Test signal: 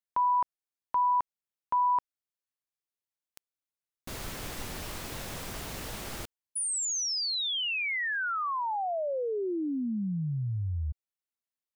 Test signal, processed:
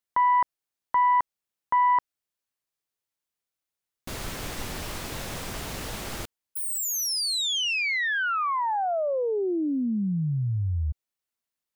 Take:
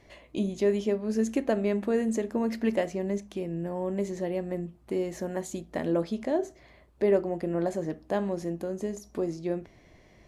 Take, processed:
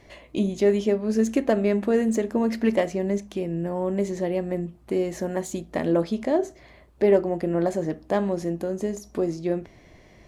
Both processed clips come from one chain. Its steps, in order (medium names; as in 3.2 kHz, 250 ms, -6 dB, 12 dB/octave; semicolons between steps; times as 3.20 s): self-modulated delay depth 0.054 ms; trim +5 dB